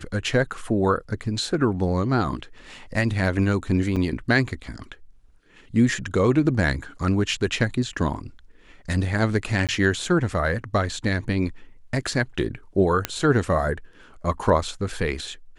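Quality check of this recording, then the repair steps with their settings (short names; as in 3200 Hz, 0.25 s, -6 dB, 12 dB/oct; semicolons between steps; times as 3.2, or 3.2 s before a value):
3.96–3.97 gap 6.4 ms
9.67–9.69 gap 17 ms
13.05 pop -6 dBFS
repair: de-click; interpolate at 3.96, 6.4 ms; interpolate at 9.67, 17 ms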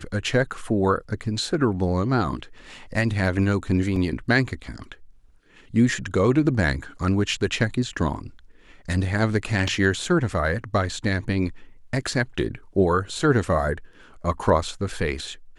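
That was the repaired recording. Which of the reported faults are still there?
none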